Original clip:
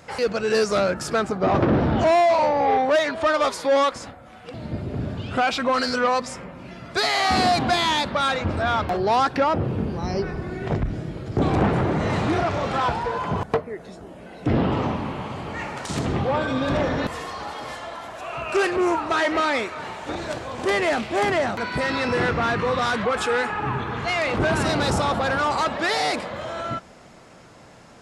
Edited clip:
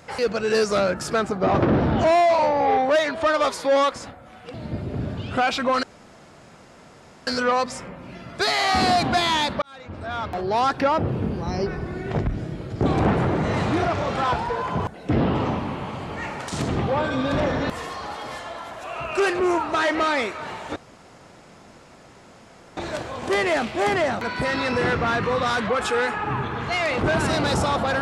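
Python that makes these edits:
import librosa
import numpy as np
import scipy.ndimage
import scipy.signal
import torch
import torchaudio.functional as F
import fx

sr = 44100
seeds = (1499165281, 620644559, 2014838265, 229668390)

y = fx.edit(x, sr, fx.insert_room_tone(at_s=5.83, length_s=1.44),
    fx.fade_in_span(start_s=8.18, length_s=1.17),
    fx.cut(start_s=13.5, length_s=0.81),
    fx.insert_room_tone(at_s=20.13, length_s=2.01), tone=tone)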